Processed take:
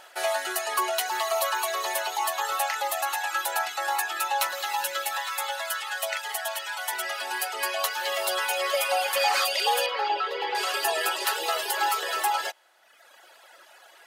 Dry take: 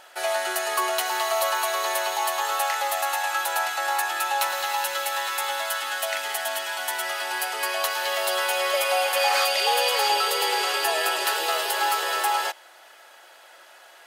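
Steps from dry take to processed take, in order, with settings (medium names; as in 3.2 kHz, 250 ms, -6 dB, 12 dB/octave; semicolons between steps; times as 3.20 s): reverb removal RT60 1.2 s; 5.17–6.93 s: Chebyshev high-pass 450 Hz, order 4; 9.86–10.55 s: distance through air 290 m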